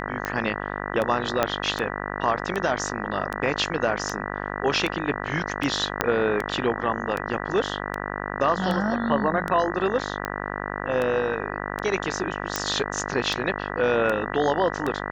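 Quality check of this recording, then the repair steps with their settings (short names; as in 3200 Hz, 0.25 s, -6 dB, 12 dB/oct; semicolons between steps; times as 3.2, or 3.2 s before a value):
buzz 50 Hz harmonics 39 -31 dBFS
tick 78 rpm -14 dBFS
1.43 pop -6 dBFS
6.01 pop -4 dBFS
12.56 pop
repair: de-click; de-hum 50 Hz, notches 39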